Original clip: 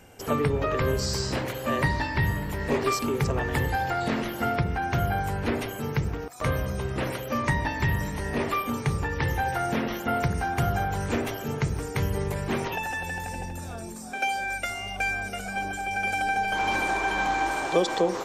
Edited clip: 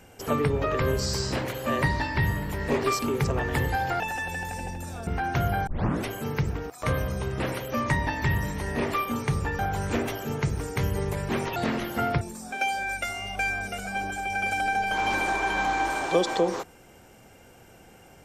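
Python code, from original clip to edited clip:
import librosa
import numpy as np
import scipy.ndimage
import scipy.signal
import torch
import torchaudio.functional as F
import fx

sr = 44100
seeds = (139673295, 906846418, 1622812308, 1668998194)

y = fx.edit(x, sr, fx.swap(start_s=4.0, length_s=0.65, other_s=12.75, other_length_s=1.07),
    fx.tape_start(start_s=5.25, length_s=0.39),
    fx.cut(start_s=9.17, length_s=1.61), tone=tone)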